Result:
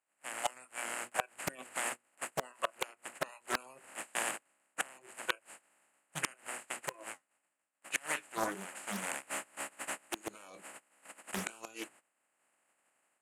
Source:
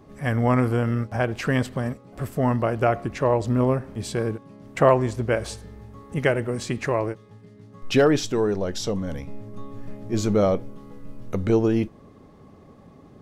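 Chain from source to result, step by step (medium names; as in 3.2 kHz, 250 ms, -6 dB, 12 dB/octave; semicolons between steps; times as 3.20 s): spectral contrast reduction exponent 0.13; hum notches 60/120/180/240/300/360/420/480 Hz; spectral noise reduction 24 dB; gate -53 dBFS, range -18 dB; high-order bell 4.6 kHz -15.5 dB 1 oct; level rider gain up to 11 dB; peak limiter -11.5 dBFS, peak gain reduction 10.5 dB; compression 8:1, threshold -31 dBFS, peak gain reduction 12 dB; 6.92–9.03 s: flange 1.8 Hz, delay 5.4 ms, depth 6.3 ms, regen +57%; inverted gate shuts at -23 dBFS, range -25 dB; cabinet simulation 370–9200 Hz, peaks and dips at 420 Hz -8 dB, 1.1 kHz -3 dB, 2.3 kHz -3 dB, 3.3 kHz -6 dB, 6.1 kHz -7 dB; loudspeaker Doppler distortion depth 0.59 ms; trim +10.5 dB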